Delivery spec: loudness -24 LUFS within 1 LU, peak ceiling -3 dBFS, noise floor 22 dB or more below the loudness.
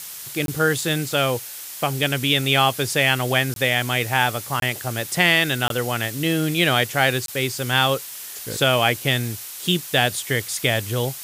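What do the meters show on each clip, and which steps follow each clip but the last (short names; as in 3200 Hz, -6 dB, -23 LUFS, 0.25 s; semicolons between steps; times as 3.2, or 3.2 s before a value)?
dropouts 5; longest dropout 22 ms; noise floor -35 dBFS; noise floor target -43 dBFS; loudness -20.5 LUFS; peak -3.0 dBFS; loudness target -24.0 LUFS
-> interpolate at 0.46/3.54/4.6/5.68/7.26, 22 ms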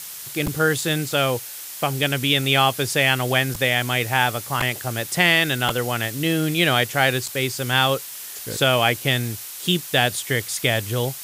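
dropouts 0; noise floor -35 dBFS; noise floor target -43 dBFS
-> noise print and reduce 8 dB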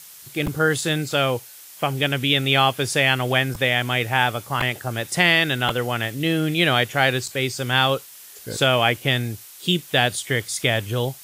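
noise floor -43 dBFS; loudness -21.0 LUFS; peak -3.0 dBFS; loudness target -24.0 LUFS
-> gain -3 dB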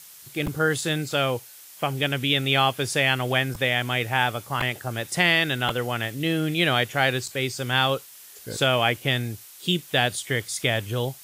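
loudness -24.0 LUFS; peak -6.0 dBFS; noise floor -46 dBFS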